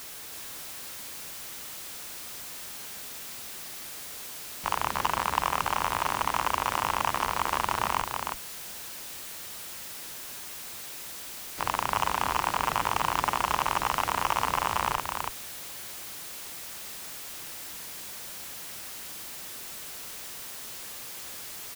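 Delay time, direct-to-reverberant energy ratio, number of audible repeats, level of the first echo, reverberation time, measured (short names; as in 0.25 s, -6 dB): 0.325 s, none, 1, -4.0 dB, none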